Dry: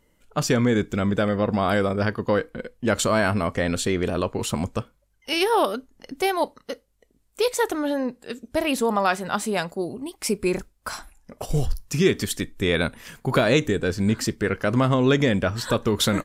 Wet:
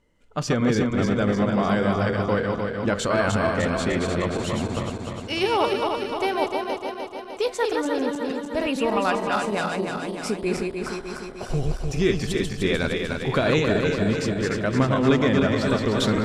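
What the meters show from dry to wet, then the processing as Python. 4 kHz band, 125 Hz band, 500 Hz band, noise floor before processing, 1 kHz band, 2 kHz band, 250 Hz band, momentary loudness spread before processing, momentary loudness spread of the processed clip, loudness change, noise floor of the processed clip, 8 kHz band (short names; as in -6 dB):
-1.5 dB, 0.0 dB, +0.5 dB, -66 dBFS, +0.5 dB, 0.0 dB, +1.0 dB, 11 LU, 9 LU, 0.0 dB, -37 dBFS, -5.5 dB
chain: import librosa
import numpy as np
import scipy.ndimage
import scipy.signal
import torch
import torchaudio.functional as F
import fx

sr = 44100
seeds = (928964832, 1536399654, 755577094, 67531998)

y = fx.reverse_delay_fb(x, sr, ms=151, feedback_pct=77, wet_db=-3.5)
y = fx.air_absorb(y, sr, metres=63.0)
y = y * 10.0 ** (-2.5 / 20.0)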